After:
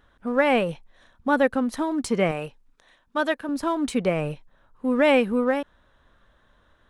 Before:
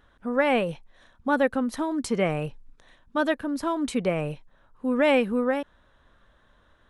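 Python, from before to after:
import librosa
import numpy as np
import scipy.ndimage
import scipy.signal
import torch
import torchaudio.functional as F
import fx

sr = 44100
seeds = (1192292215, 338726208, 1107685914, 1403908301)

p1 = np.sign(x) * np.maximum(np.abs(x) - 10.0 ** (-38.5 / 20.0), 0.0)
p2 = x + F.gain(torch.from_numpy(p1), -10.0).numpy()
y = fx.low_shelf(p2, sr, hz=260.0, db=-11.0, at=(2.31, 3.49))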